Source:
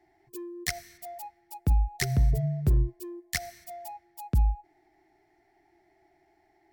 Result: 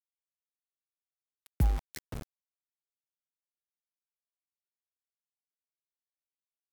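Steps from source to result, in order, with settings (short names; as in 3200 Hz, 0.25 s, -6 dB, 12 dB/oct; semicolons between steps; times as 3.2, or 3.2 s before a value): Doppler pass-by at 1.55, 15 m/s, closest 1.5 m; sample gate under -33 dBFS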